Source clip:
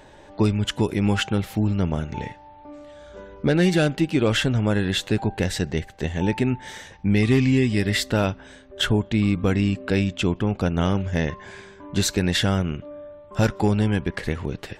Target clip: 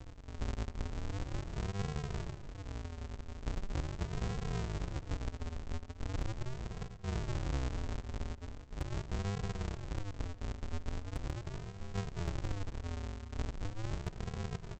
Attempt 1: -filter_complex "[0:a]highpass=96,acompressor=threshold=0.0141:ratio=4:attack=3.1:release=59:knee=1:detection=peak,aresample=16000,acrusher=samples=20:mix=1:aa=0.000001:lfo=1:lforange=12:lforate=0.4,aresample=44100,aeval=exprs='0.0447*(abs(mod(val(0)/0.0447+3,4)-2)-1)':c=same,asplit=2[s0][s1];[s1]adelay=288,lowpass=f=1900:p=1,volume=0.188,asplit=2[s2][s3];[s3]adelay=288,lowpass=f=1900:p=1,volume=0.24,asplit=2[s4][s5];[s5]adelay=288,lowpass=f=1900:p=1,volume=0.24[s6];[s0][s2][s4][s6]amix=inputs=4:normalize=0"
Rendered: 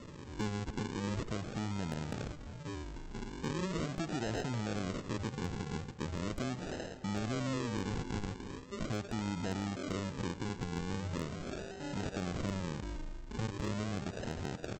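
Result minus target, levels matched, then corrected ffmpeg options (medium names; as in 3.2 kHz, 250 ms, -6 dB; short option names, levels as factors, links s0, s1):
decimation with a swept rate: distortion -37 dB
-filter_complex "[0:a]highpass=96,acompressor=threshold=0.0141:ratio=4:attack=3.1:release=59:knee=1:detection=peak,aresample=16000,acrusher=samples=76:mix=1:aa=0.000001:lfo=1:lforange=45.6:lforate=0.4,aresample=44100,aeval=exprs='0.0447*(abs(mod(val(0)/0.0447+3,4)-2)-1)':c=same,asplit=2[s0][s1];[s1]adelay=288,lowpass=f=1900:p=1,volume=0.188,asplit=2[s2][s3];[s3]adelay=288,lowpass=f=1900:p=1,volume=0.24,asplit=2[s4][s5];[s5]adelay=288,lowpass=f=1900:p=1,volume=0.24[s6];[s0][s2][s4][s6]amix=inputs=4:normalize=0"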